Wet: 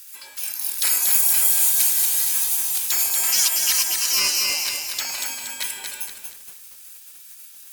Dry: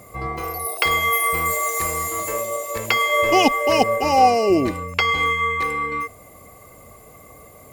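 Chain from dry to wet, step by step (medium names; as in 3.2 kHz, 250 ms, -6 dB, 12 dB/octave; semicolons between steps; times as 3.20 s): spectral gate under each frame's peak -25 dB weak; tilt EQ +4.5 dB/octave; bit-crushed delay 235 ms, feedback 55%, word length 7-bit, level -4 dB; trim +2 dB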